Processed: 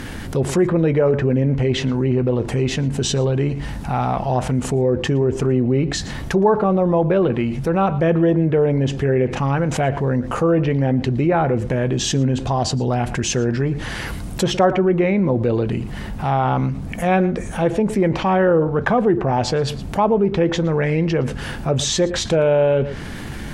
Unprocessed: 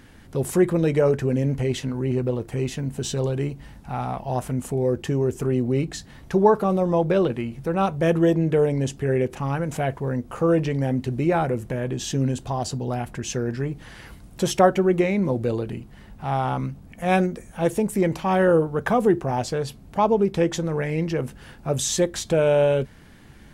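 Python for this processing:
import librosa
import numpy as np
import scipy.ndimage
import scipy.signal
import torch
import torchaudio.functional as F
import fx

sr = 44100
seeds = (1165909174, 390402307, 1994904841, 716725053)

y = fx.env_lowpass_down(x, sr, base_hz=2600.0, full_db=-18.0)
y = y + 10.0 ** (-20.5 / 20.0) * np.pad(y, (int(115 * sr / 1000.0), 0))[:len(y)]
y = fx.env_flatten(y, sr, amount_pct=50)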